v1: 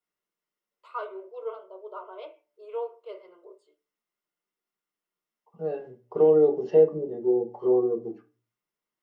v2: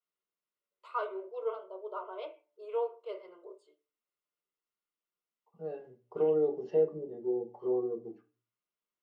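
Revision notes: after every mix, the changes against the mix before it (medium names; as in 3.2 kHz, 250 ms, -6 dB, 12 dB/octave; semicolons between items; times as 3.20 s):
second voice -9.0 dB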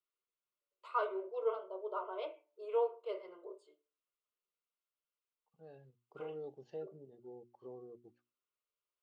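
second voice: send off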